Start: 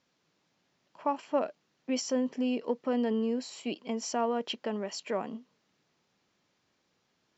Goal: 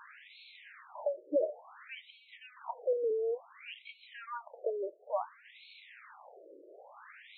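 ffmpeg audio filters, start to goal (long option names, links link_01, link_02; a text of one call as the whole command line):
ffmpeg -i in.wav -af "aeval=exprs='val(0)+0.5*0.00944*sgn(val(0))':channel_layout=same,equalizer=frequency=3100:width_type=o:width=0.5:gain=-7,afftfilt=real='re*between(b*sr/1024,420*pow(3100/420,0.5+0.5*sin(2*PI*0.57*pts/sr))/1.41,420*pow(3100/420,0.5+0.5*sin(2*PI*0.57*pts/sr))*1.41)':imag='im*between(b*sr/1024,420*pow(3100/420,0.5+0.5*sin(2*PI*0.57*pts/sr))/1.41,420*pow(3100/420,0.5+0.5*sin(2*PI*0.57*pts/sr))*1.41)':win_size=1024:overlap=0.75,volume=1.5dB" out.wav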